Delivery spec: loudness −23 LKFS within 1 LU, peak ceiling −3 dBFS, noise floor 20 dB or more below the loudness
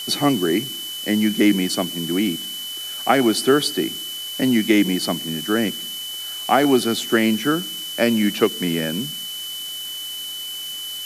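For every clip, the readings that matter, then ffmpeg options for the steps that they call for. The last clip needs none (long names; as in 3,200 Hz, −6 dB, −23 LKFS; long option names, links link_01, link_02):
interfering tone 3,000 Hz; level of the tone −29 dBFS; background noise floor −31 dBFS; target noise floor −41 dBFS; integrated loudness −21.0 LKFS; sample peak −2.0 dBFS; target loudness −23.0 LKFS
→ -af "bandreject=frequency=3000:width=30"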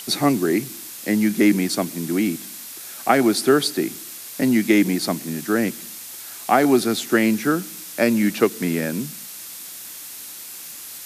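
interfering tone none found; background noise floor −37 dBFS; target noise floor −41 dBFS
→ -af "afftdn=noise_reduction=6:noise_floor=-37"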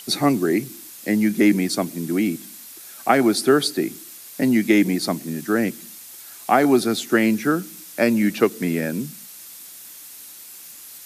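background noise floor −41 dBFS; integrated loudness −20.5 LKFS; sample peak −2.0 dBFS; target loudness −23.0 LKFS
→ -af "volume=-2.5dB"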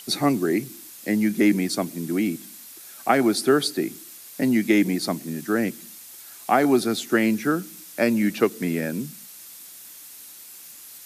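integrated loudness −23.0 LKFS; sample peak −4.5 dBFS; background noise floor −44 dBFS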